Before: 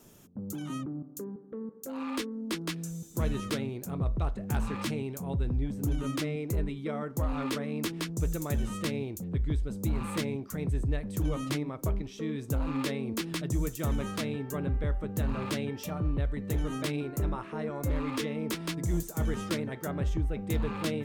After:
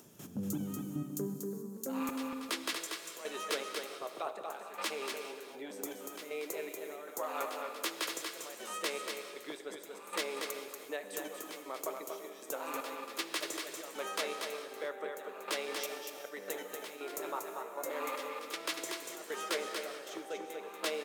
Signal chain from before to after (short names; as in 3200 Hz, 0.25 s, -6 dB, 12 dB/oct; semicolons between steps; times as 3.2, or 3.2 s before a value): HPF 99 Hz 24 dB/oct, from 2.09 s 450 Hz; upward compressor, threshold -39 dBFS; crackle 89/s -58 dBFS; step gate "..xxxx.." 157 bpm -12 dB; echo 0.237 s -5 dB; non-linear reverb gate 0.46 s flat, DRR 7.5 dB; gain +1 dB